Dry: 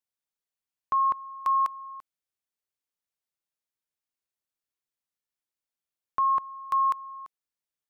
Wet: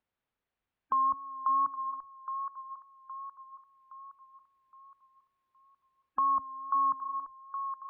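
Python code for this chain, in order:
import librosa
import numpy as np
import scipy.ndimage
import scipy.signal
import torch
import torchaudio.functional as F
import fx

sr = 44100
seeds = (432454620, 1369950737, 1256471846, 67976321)

y = fx.octave_divider(x, sr, octaves=2, level_db=-4.0)
y = fx.spec_gate(y, sr, threshold_db=-30, keep='strong')
y = fx.wow_flutter(y, sr, seeds[0], rate_hz=2.1, depth_cents=27.0)
y = fx.air_absorb(y, sr, metres=440.0)
y = fx.echo_wet_highpass(y, sr, ms=817, feedback_pct=34, hz=1700.0, wet_db=-4.5)
y = fx.band_squash(y, sr, depth_pct=40)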